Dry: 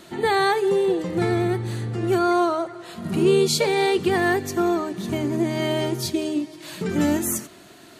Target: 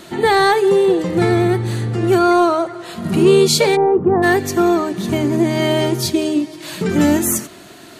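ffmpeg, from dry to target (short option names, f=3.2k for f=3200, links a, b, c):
-filter_complex "[0:a]acontrast=47,asplit=3[a][b][c];[a]afade=t=out:st=3.75:d=0.02[d];[b]lowpass=f=1.1k:w=0.5412,lowpass=f=1.1k:w=1.3066,afade=t=in:st=3.75:d=0.02,afade=t=out:st=4.22:d=0.02[e];[c]afade=t=in:st=4.22:d=0.02[f];[d][e][f]amix=inputs=3:normalize=0,volume=1.5dB"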